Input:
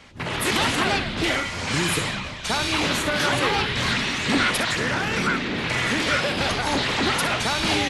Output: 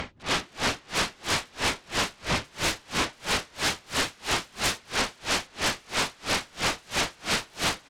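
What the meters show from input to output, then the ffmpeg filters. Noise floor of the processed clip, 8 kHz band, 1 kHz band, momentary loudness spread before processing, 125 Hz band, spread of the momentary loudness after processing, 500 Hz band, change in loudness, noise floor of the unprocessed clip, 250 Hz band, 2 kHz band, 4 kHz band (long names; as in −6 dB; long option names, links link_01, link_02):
−56 dBFS, −1.0 dB, −6.0 dB, 4 LU, −9.5 dB, 3 LU, −7.5 dB, −5.5 dB, −32 dBFS, −10.5 dB, −7.0 dB, −4.5 dB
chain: -filter_complex "[0:a]alimiter=limit=-21.5dB:level=0:latency=1:release=17,acrossover=split=5300[link_01][link_02];[link_02]acompressor=threshold=-51dB:ratio=4:attack=1:release=60[link_03];[link_01][link_03]amix=inputs=2:normalize=0,lowpass=6900,highshelf=frequency=2100:gain=-6.5,asplit=2[link_04][link_05];[link_05]aecho=0:1:685:0.708[link_06];[link_04][link_06]amix=inputs=2:normalize=0,aeval=exprs='0.0841*sin(PI/2*3.98*val(0)/0.0841)':channel_layout=same,acompressor=mode=upward:threshold=-33dB:ratio=2.5,aeval=exprs='val(0)*pow(10,-33*(0.5-0.5*cos(2*PI*3*n/s))/20)':channel_layout=same,volume=1.5dB"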